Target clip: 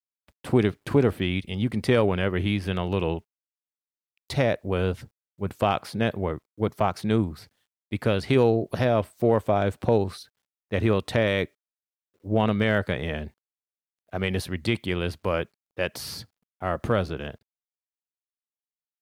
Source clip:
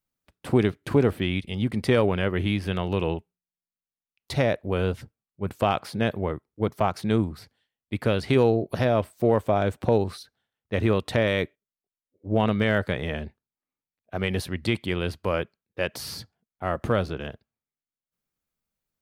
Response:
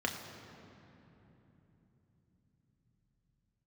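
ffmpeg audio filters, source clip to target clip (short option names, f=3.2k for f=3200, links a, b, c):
-af "acrusher=bits=11:mix=0:aa=0.000001"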